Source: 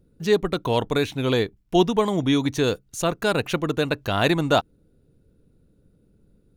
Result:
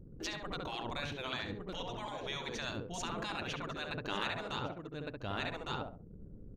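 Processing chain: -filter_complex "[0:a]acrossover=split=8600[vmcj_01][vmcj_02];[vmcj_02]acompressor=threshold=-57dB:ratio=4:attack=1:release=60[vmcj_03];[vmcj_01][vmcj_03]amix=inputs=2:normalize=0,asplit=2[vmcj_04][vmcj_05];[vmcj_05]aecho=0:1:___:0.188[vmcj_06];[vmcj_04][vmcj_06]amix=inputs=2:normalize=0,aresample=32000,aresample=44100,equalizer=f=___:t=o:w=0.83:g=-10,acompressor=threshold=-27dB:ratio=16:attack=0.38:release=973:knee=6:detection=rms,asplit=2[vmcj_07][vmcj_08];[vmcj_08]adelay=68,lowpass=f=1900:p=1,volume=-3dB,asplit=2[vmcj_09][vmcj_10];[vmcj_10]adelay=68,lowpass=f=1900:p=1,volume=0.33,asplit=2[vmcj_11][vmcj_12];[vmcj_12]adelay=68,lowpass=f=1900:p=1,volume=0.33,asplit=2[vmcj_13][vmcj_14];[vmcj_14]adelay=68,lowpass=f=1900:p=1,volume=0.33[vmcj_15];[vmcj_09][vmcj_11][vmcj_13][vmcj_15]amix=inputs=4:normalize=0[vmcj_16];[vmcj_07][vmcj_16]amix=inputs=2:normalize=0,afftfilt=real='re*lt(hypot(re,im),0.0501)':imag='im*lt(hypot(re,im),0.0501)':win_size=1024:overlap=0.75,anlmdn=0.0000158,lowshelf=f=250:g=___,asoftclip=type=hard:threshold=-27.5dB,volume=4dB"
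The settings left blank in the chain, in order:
1158, 11000, 4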